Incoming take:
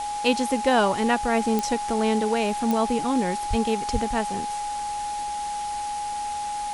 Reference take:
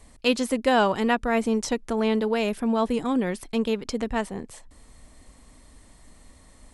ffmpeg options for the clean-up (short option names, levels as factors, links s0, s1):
-filter_complex "[0:a]adeclick=t=4,bandreject=f=830:w=30,asplit=3[s0][s1][s2];[s0]afade=t=out:st=3.49:d=0.02[s3];[s1]highpass=f=140:w=0.5412,highpass=f=140:w=1.3066,afade=t=in:st=3.49:d=0.02,afade=t=out:st=3.61:d=0.02[s4];[s2]afade=t=in:st=3.61:d=0.02[s5];[s3][s4][s5]amix=inputs=3:normalize=0,asplit=3[s6][s7][s8];[s6]afade=t=out:st=3.92:d=0.02[s9];[s7]highpass=f=140:w=0.5412,highpass=f=140:w=1.3066,afade=t=in:st=3.92:d=0.02,afade=t=out:st=4.04:d=0.02[s10];[s8]afade=t=in:st=4.04:d=0.02[s11];[s9][s10][s11]amix=inputs=3:normalize=0,afwtdn=0.013"